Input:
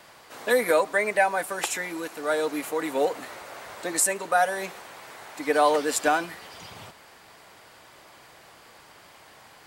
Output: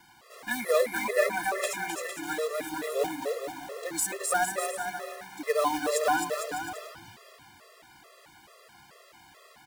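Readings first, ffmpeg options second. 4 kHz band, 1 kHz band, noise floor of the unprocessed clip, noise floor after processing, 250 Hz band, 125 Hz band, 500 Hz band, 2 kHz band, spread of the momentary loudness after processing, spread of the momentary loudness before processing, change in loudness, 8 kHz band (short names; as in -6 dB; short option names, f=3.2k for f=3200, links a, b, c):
-3.0 dB, -4.5 dB, -52 dBFS, -56 dBFS, -4.5 dB, -3.0 dB, -3.5 dB, -4.0 dB, 12 LU, 20 LU, -4.5 dB, -3.5 dB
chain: -af "acrusher=bits=3:mode=log:mix=0:aa=0.000001,aecho=1:1:260|455|601.2|710.9|793.2:0.631|0.398|0.251|0.158|0.1,afftfilt=real='re*gt(sin(2*PI*2.3*pts/sr)*(1-2*mod(floor(b*sr/1024/350),2)),0)':imag='im*gt(sin(2*PI*2.3*pts/sr)*(1-2*mod(floor(b*sr/1024/350),2)),0)':win_size=1024:overlap=0.75,volume=-3dB"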